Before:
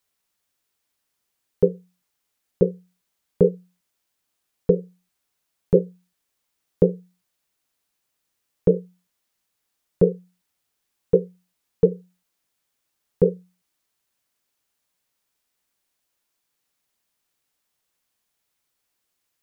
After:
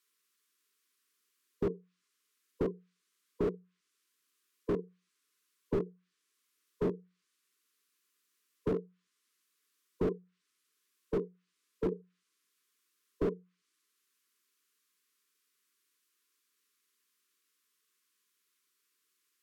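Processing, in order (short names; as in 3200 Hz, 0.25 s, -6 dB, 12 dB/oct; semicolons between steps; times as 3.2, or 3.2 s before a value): added harmonics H 6 -9 dB, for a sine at -3 dBFS; HPF 310 Hz 12 dB/oct; treble ducked by the level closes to 820 Hz, closed at -20 dBFS; brick-wall FIR band-stop 480–1000 Hz; slew limiter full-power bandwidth 16 Hz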